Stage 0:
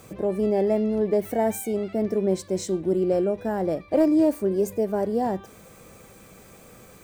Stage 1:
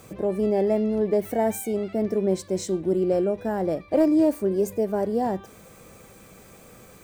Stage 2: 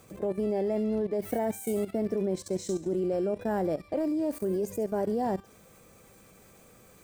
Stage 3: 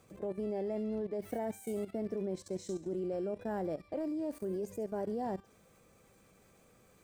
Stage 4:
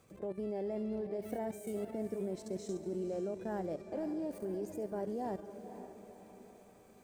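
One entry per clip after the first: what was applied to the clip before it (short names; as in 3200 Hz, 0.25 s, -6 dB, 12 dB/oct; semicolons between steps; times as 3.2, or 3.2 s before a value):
nothing audible
thin delay 69 ms, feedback 46%, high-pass 4400 Hz, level -5 dB; level quantiser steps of 14 dB
high shelf 10000 Hz -7.5 dB; gain -7.5 dB
diffused feedback echo 0.506 s, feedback 50%, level -10.5 dB; gain -2 dB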